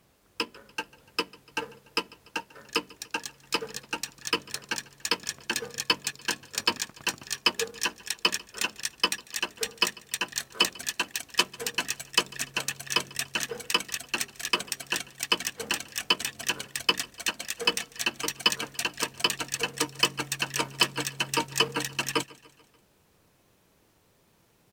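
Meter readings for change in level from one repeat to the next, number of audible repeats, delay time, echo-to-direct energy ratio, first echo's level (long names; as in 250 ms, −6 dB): −5.0 dB, 3, 146 ms, −21.5 dB, −23.0 dB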